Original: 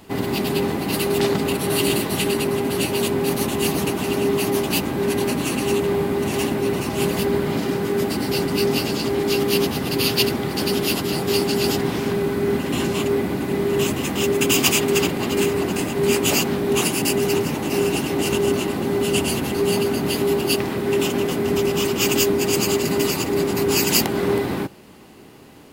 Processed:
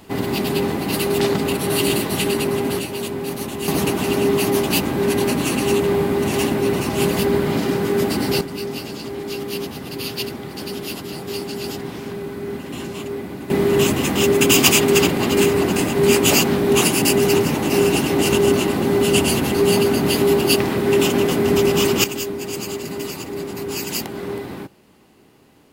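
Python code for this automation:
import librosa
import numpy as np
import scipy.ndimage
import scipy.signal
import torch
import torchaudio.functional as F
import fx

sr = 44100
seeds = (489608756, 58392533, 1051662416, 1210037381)

y = fx.gain(x, sr, db=fx.steps((0.0, 1.0), (2.79, -5.0), (3.68, 2.5), (8.41, -7.5), (13.5, 4.0), (22.04, -7.5)))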